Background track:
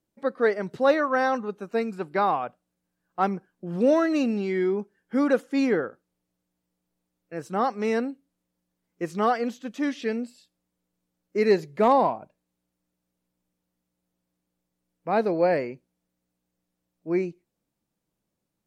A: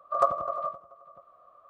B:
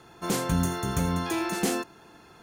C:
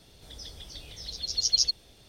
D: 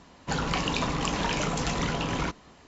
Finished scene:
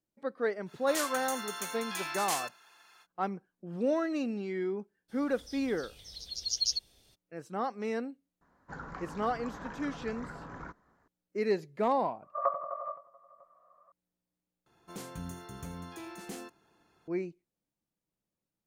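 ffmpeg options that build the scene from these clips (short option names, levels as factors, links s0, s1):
-filter_complex "[2:a]asplit=2[s0][s1];[0:a]volume=0.355[s2];[s0]highpass=1300[s3];[3:a]highshelf=f=4600:g=8[s4];[4:a]highshelf=f=2100:t=q:w=3:g=-10[s5];[1:a]highpass=210,equalizer=f=220:t=q:w=4:g=-8,equalizer=f=350:t=q:w=4:g=-4,equalizer=f=580:t=q:w=4:g=6,equalizer=f=980:t=q:w=4:g=9,equalizer=f=1900:t=q:w=4:g=8,lowpass=f=2300:w=0.5412,lowpass=f=2300:w=1.3066[s6];[s2]asplit=2[s7][s8];[s7]atrim=end=14.664[s9];[s1]atrim=end=2.42,asetpts=PTS-STARTPTS,volume=0.158[s10];[s8]atrim=start=17.076[s11];[s3]atrim=end=2.42,asetpts=PTS-STARTPTS,volume=0.794,afade=t=in:d=0.05,afade=t=out:st=2.37:d=0.05,adelay=650[s12];[s4]atrim=end=2.08,asetpts=PTS-STARTPTS,volume=0.299,afade=t=in:d=0.02,afade=t=out:st=2.06:d=0.02,adelay=5080[s13];[s5]atrim=end=2.67,asetpts=PTS-STARTPTS,volume=0.15,afade=t=in:d=0.004:c=hsin,afade=t=out:st=2.666:d=0.004:c=hsin,adelay=8410[s14];[s6]atrim=end=1.69,asetpts=PTS-STARTPTS,volume=0.299,afade=t=in:d=0.004:c=hsin,afade=t=out:st=1.686:d=0.004:c=hsin,adelay=12230[s15];[s9][s10]acrossfade=d=0.004:c1=hsin:c2=hsin[s16];[s16][s11]acrossfade=d=0.004:c1=hsin:c2=hsin[s17];[s17][s12][s13][s14][s15]amix=inputs=5:normalize=0"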